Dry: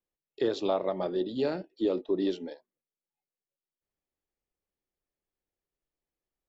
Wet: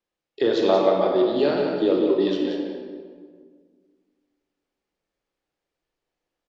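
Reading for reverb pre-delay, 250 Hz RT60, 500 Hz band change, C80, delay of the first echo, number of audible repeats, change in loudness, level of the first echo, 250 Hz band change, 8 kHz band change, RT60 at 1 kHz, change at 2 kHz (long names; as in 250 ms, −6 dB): 26 ms, 2.3 s, +10.0 dB, 2.0 dB, 180 ms, 1, +9.5 dB, −6.5 dB, +9.0 dB, can't be measured, 1.6 s, +11.0 dB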